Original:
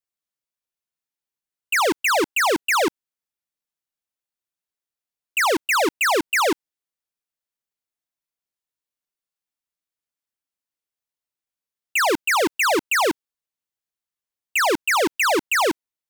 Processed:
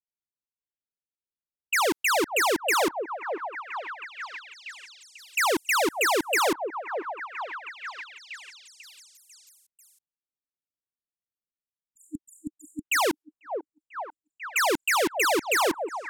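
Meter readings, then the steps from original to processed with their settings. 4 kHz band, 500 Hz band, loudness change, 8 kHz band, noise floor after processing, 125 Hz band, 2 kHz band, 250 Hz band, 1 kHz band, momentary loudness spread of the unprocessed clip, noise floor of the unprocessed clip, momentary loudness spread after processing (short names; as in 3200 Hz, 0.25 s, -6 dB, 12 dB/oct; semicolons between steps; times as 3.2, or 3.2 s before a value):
-4.5 dB, -4.0 dB, -5.5 dB, -3.0 dB, under -85 dBFS, -4.5 dB, -5.0 dB, -5.0 dB, -4.5 dB, 5 LU, under -85 dBFS, 19 LU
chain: spectral delete 11.51–12.85, 310–6900 Hz; low-pass opened by the level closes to 370 Hz, open at -23.5 dBFS; high shelf 8100 Hz +5.5 dB; on a send: delay with a stepping band-pass 0.494 s, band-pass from 550 Hz, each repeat 0.7 oct, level -4.5 dB; on the sum: gain -4.5 dB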